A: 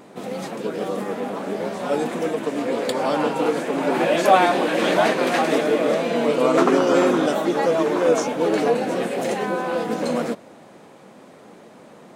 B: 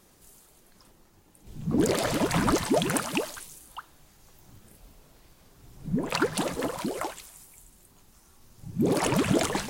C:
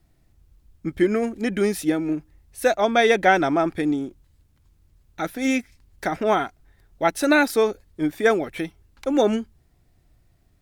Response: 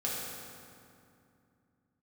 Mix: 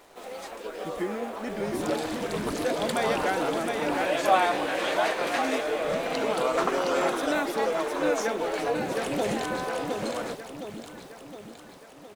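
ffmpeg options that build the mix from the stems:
-filter_complex "[0:a]highpass=520,volume=-5.5dB,asplit=2[link_01][link_02];[link_02]volume=-19.5dB[link_03];[1:a]equalizer=frequency=3800:width_type=o:width=0.77:gain=6,volume=-11dB,asplit=2[link_04][link_05];[link_05]volume=-4dB[link_06];[2:a]volume=-12dB,asplit=2[link_07][link_08];[link_08]volume=-4dB[link_09];[link_03][link_06][link_09]amix=inputs=3:normalize=0,aecho=0:1:714|1428|2142|2856|3570|4284|4998|5712:1|0.55|0.303|0.166|0.0915|0.0503|0.0277|0.0152[link_10];[link_01][link_04][link_07][link_10]amix=inputs=4:normalize=0,acrusher=bits=8:mix=0:aa=0.5"

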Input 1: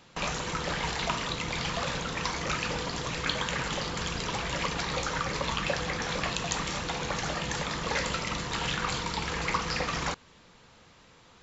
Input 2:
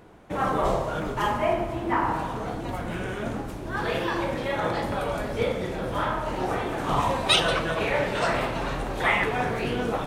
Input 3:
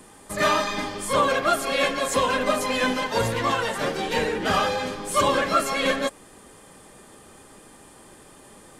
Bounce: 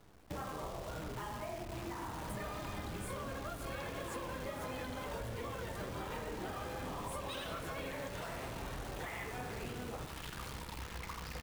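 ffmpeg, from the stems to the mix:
ffmpeg -i stem1.wav -i stem2.wav -i stem3.wav -filter_complex "[0:a]adynamicsmooth=sensitivity=5.5:basefreq=2600,adelay=1550,volume=-15.5dB,asplit=2[link_01][link_02];[link_02]volume=-6dB[link_03];[1:a]volume=-10dB,asplit=2[link_04][link_05];[link_05]volume=-11dB[link_06];[2:a]equalizer=frequency=5500:width=0.63:gain=-7,acompressor=threshold=-30dB:ratio=6,adelay=2000,volume=-5dB[link_07];[link_01][link_04]amix=inputs=2:normalize=0,acrossover=split=260[link_08][link_09];[link_08]acompressor=threshold=-41dB:ratio=6[link_10];[link_10][link_09]amix=inputs=2:normalize=0,alimiter=level_in=4dB:limit=-24dB:level=0:latency=1:release=429,volume=-4dB,volume=0dB[link_11];[link_03][link_06]amix=inputs=2:normalize=0,aecho=0:1:83:1[link_12];[link_07][link_11][link_12]amix=inputs=3:normalize=0,equalizer=frequency=67:width_type=o:width=1.9:gain=10.5,acrusher=bits=8:dc=4:mix=0:aa=0.000001,acompressor=threshold=-40dB:ratio=4" out.wav

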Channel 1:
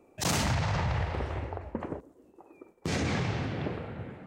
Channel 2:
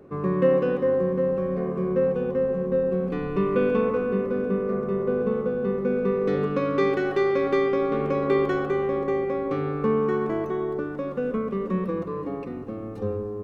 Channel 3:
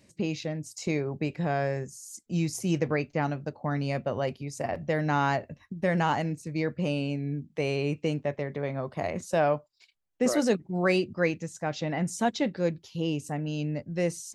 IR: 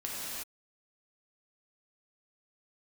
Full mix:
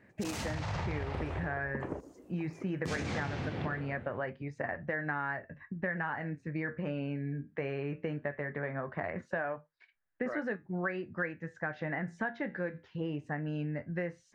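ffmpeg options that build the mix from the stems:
-filter_complex "[0:a]dynaudnorm=framelen=170:gausssize=9:maxgain=12dB,volume=-9.5dB[link_01];[2:a]flanger=delay=9.3:depth=5.8:regen=-65:speed=0.2:shape=sinusoidal,lowpass=frequency=1700:width_type=q:width=5.6,volume=1.5dB[link_02];[link_01][link_02]amix=inputs=2:normalize=0,acompressor=threshold=-32dB:ratio=6"

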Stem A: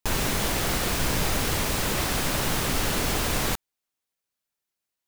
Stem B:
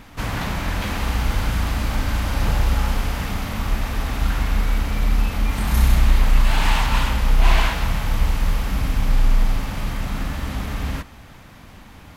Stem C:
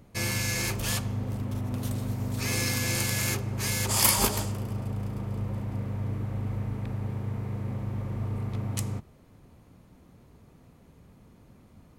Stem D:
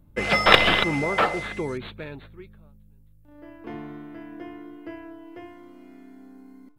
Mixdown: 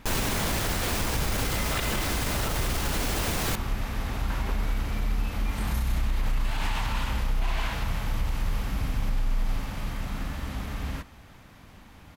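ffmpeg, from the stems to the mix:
ffmpeg -i stem1.wav -i stem2.wav -i stem3.wav -i stem4.wav -filter_complex "[0:a]asoftclip=type=tanh:threshold=-19dB,volume=0.5dB[link_01];[1:a]volume=-7dB[link_02];[2:a]lowpass=1300,adelay=250,volume=-10dB[link_03];[3:a]adelay=1250,volume=-13.5dB[link_04];[link_01][link_02][link_03][link_04]amix=inputs=4:normalize=0,alimiter=limit=-18.5dB:level=0:latency=1:release=65" out.wav

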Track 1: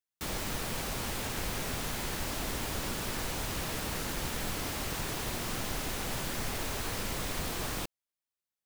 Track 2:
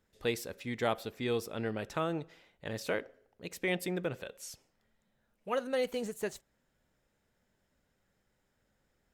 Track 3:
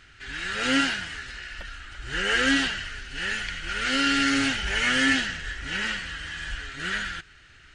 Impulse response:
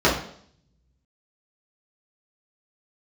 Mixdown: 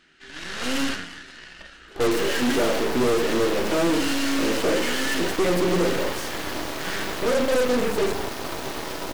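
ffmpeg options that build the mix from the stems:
-filter_complex "[0:a]highpass=frequency=270:width=0.5412,highpass=frequency=270:width=1.3066,adelay=1900,volume=-6.5dB,asplit=2[link_01][link_02];[link_02]volume=-12dB[link_03];[1:a]equalizer=frequency=380:width=1:gain=12,adelay=1750,volume=2dB,asplit=2[link_04][link_05];[link_05]volume=-19dB[link_06];[2:a]volume=-6dB,asplit=2[link_07][link_08];[link_08]volume=-23.5dB[link_09];[3:a]atrim=start_sample=2205[link_10];[link_03][link_06][link_09]amix=inputs=3:normalize=0[link_11];[link_11][link_10]afir=irnorm=-1:irlink=0[link_12];[link_01][link_04][link_07][link_12]amix=inputs=4:normalize=0,lowshelf=frequency=140:width_type=q:width=1.5:gain=-10.5,asoftclip=type=tanh:threshold=-18.5dB,aeval=exprs='0.119*(cos(1*acos(clip(val(0)/0.119,-1,1)))-cos(1*PI/2))+0.0376*(cos(6*acos(clip(val(0)/0.119,-1,1)))-cos(6*PI/2))':channel_layout=same"

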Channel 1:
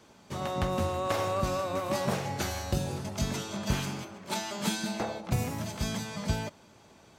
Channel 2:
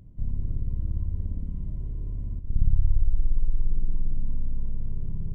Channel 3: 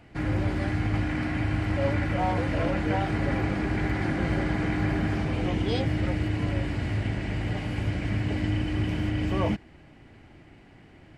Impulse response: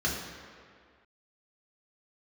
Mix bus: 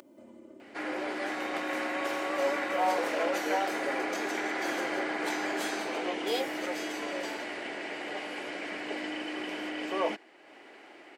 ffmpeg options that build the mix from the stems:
-filter_complex "[0:a]adelay=950,volume=-5.5dB[link_01];[1:a]aecho=1:1:3.4:0.91,volume=0dB[link_02];[2:a]adelay=600,volume=0.5dB[link_03];[link_01][link_02][link_03]amix=inputs=3:normalize=0,highpass=frequency=370:width=0.5412,highpass=frequency=370:width=1.3066,acompressor=mode=upward:threshold=-44dB:ratio=2.5"

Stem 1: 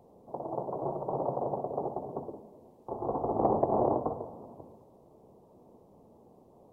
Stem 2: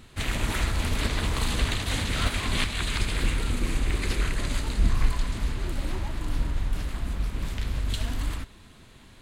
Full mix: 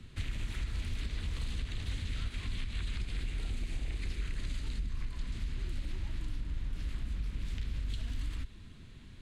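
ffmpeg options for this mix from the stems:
ffmpeg -i stem1.wav -i stem2.wav -filter_complex "[0:a]volume=-13.5dB[link_01];[1:a]aemphasis=mode=reproduction:type=75fm,acompressor=threshold=-26dB:ratio=6,volume=2dB[link_02];[link_01][link_02]amix=inputs=2:normalize=0,equalizer=frequency=770:width_type=o:width=2.4:gain=-14.5,acrossover=split=95|190|1700[link_03][link_04][link_05][link_06];[link_03]acompressor=threshold=-33dB:ratio=4[link_07];[link_04]acompressor=threshold=-52dB:ratio=4[link_08];[link_05]acompressor=threshold=-52dB:ratio=4[link_09];[link_06]acompressor=threshold=-47dB:ratio=4[link_10];[link_07][link_08][link_09][link_10]amix=inputs=4:normalize=0" out.wav

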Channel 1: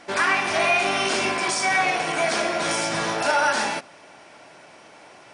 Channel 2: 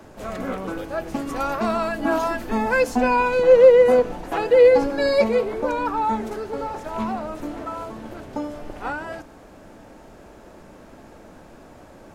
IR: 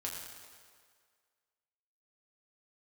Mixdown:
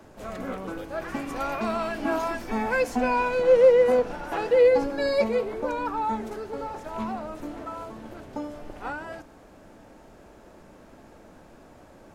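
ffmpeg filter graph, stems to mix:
-filter_complex "[0:a]lowpass=frequency=2000:poles=1,adelay=850,volume=-17.5dB[link_01];[1:a]volume=-5dB[link_02];[link_01][link_02]amix=inputs=2:normalize=0"

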